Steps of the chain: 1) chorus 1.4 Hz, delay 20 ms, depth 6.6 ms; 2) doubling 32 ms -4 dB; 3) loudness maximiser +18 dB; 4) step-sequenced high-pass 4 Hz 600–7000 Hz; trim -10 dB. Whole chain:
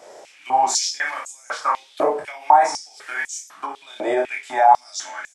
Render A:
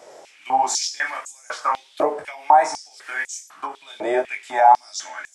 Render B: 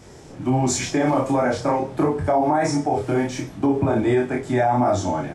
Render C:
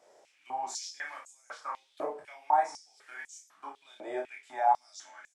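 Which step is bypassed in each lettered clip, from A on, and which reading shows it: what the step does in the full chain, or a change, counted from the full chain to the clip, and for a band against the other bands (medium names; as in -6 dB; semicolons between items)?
2, momentary loudness spread change +2 LU; 4, 250 Hz band +19.0 dB; 3, crest factor change +2.0 dB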